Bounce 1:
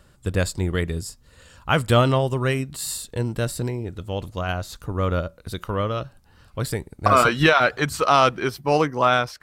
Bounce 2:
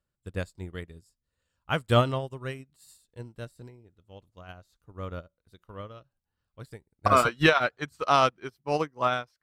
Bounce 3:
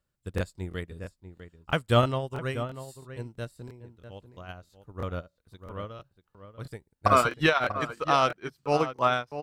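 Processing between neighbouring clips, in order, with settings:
upward expander 2.5:1, over -32 dBFS; gain -2.5 dB
vocal rider within 3 dB 0.5 s; outdoor echo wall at 110 m, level -11 dB; crackling interface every 0.33 s, samples 1024, repeat, from 0.36

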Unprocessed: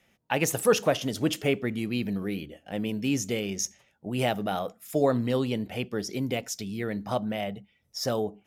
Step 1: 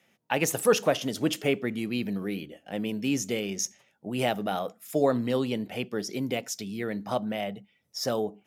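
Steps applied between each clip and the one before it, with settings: HPF 140 Hz 12 dB/oct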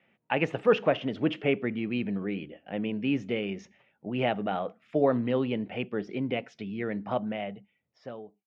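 ending faded out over 1.34 s; Chebyshev low-pass 2700 Hz, order 3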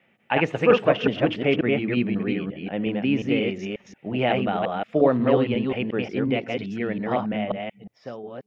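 reverse delay 0.179 s, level -2 dB; gain +4.5 dB

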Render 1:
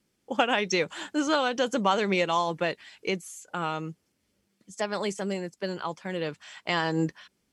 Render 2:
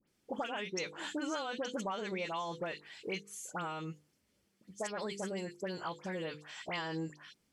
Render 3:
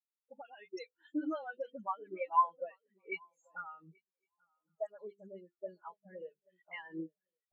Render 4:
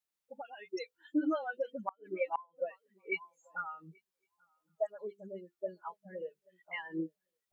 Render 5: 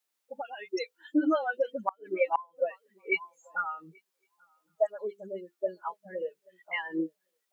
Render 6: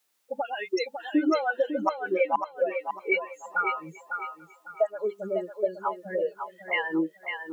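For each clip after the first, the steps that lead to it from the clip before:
notches 50/100/150/200/250/300/350/400/450/500 Hz; compressor 5:1, threshold -33 dBFS, peak gain reduction 14 dB; dispersion highs, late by 76 ms, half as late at 1900 Hz; gain -2 dB
tilt shelf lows -4.5 dB, about 800 Hz; swung echo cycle 1.111 s, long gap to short 3:1, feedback 39%, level -8 dB; spectral expander 4:1; gain +4 dB
flipped gate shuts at -26 dBFS, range -30 dB; gain +5 dB
HPF 270 Hz 12 dB/oct; gain +7.5 dB
compressor 2:1, threshold -35 dBFS, peak gain reduction 8.5 dB; on a send: thinning echo 0.551 s, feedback 29%, high-pass 380 Hz, level -6 dB; on the sum: gain +9 dB

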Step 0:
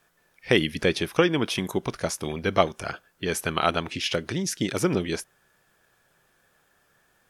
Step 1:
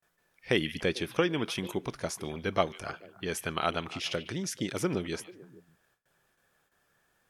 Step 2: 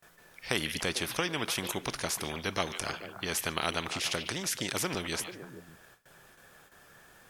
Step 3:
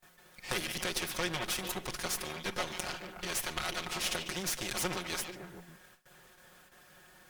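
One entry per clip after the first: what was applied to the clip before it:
delay with a stepping band-pass 0.147 s, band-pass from 2600 Hz, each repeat -1.4 oct, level -12 dB; gate with hold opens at -55 dBFS; gain -6.5 dB
spectral compressor 2:1; gain -2.5 dB
minimum comb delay 5.5 ms

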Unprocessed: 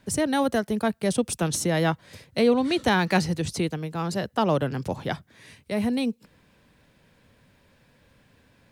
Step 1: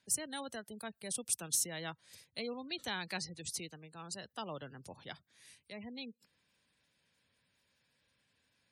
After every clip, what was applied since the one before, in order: spectral gate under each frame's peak -30 dB strong; HPF 55 Hz; pre-emphasis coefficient 0.9; gain -3 dB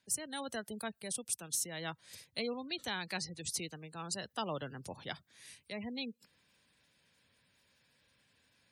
vocal rider within 4 dB 0.5 s; gain +1 dB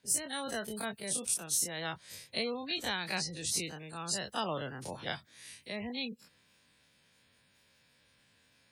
spectral dilation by 60 ms

